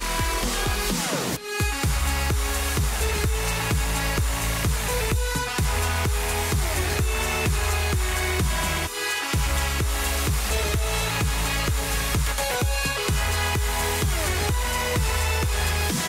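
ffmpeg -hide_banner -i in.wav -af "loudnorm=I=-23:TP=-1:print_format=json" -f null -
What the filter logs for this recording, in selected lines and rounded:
"input_i" : "-24.1",
"input_tp" : "-13.4",
"input_lra" : "0.7",
"input_thresh" : "-34.1",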